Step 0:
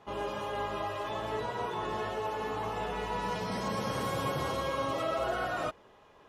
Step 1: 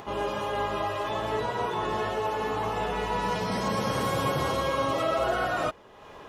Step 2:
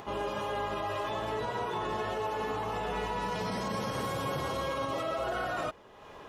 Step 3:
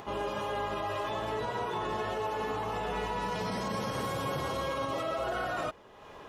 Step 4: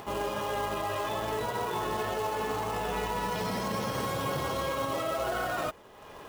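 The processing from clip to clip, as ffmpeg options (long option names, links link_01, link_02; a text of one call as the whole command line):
ffmpeg -i in.wav -af "acompressor=mode=upward:threshold=-42dB:ratio=2.5,volume=5.5dB" out.wav
ffmpeg -i in.wav -af "alimiter=limit=-22.5dB:level=0:latency=1:release=47,volume=-2.5dB" out.wav
ffmpeg -i in.wav -af anull out.wav
ffmpeg -i in.wav -af "acrusher=bits=3:mode=log:mix=0:aa=0.000001,volume=1.5dB" out.wav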